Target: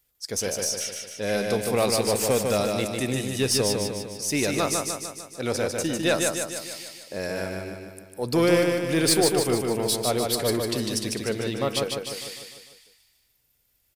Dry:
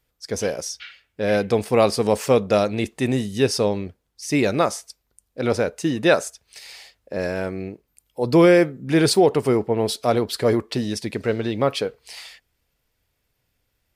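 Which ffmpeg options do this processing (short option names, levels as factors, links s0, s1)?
-af "crystalizer=i=3:c=0,aeval=exprs='(tanh(2.51*val(0)+0.15)-tanh(0.15))/2.51':c=same,aecho=1:1:150|300|450|600|750|900|1050:0.631|0.347|0.191|0.105|0.0577|0.0318|0.0175,volume=0.501"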